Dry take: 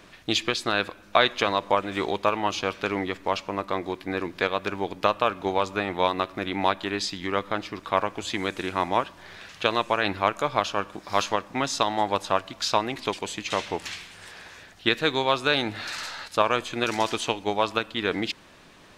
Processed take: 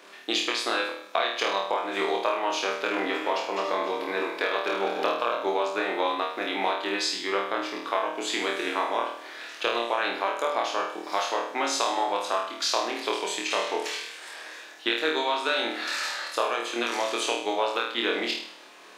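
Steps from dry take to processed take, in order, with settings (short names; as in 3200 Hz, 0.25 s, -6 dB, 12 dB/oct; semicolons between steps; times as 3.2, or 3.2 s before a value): 2.76–5.35 regenerating reverse delay 0.144 s, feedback 55%, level -7.5 dB; HPF 310 Hz 24 dB/oct; compressor, threshold -24 dBFS, peak gain reduction 10.5 dB; flutter echo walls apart 4.4 m, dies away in 0.61 s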